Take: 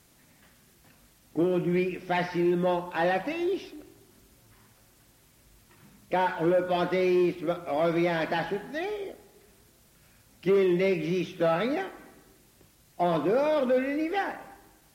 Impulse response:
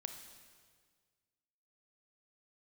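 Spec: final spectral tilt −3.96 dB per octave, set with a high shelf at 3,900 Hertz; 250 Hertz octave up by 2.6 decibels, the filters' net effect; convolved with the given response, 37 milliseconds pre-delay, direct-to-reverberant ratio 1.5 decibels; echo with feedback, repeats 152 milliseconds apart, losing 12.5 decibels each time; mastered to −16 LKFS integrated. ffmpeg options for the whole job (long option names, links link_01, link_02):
-filter_complex "[0:a]equalizer=frequency=250:width_type=o:gain=4.5,highshelf=frequency=3900:gain=-5,aecho=1:1:152|304|456:0.237|0.0569|0.0137,asplit=2[link_01][link_02];[1:a]atrim=start_sample=2205,adelay=37[link_03];[link_02][link_03]afir=irnorm=-1:irlink=0,volume=1dB[link_04];[link_01][link_04]amix=inputs=2:normalize=0,volume=8dB"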